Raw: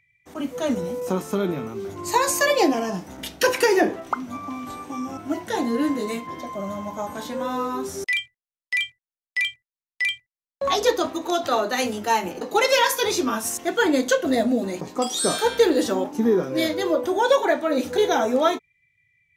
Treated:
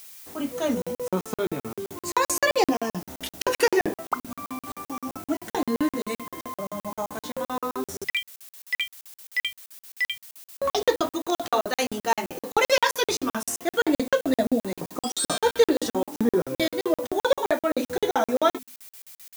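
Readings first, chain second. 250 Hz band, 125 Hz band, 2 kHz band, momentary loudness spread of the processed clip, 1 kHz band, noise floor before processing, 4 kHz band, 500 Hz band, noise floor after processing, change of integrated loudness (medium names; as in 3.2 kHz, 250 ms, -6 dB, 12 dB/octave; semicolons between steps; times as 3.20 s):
-3.0 dB, -2.5 dB, -3.0 dB, 14 LU, -3.0 dB, under -85 dBFS, -2.5 dB, -3.0 dB, under -85 dBFS, -3.0 dB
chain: hum notches 50/100/150/200/250 Hz; added noise blue -44 dBFS; crackling interface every 0.13 s, samples 2048, zero, from 0.82 s; trim -1 dB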